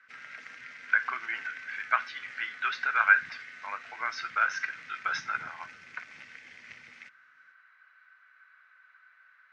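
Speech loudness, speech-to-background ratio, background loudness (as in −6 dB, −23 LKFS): −29.5 LKFS, 18.0 dB, −47.5 LKFS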